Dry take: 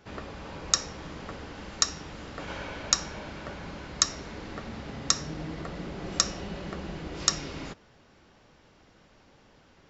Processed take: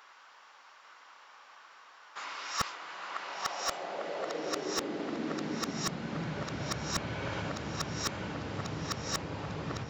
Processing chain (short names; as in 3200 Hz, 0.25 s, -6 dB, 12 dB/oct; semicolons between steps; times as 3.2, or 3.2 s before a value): whole clip reversed; darkening echo 0.848 s, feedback 36%, low-pass 3300 Hz, level -3.5 dB; in parallel at -2 dB: compressor, threshold -47 dBFS, peak gain reduction 28 dB; on the sum: high-pass sweep 1100 Hz -> 110 Hz, 3.1–6.6; slew limiter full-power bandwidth 210 Hz; gain -2 dB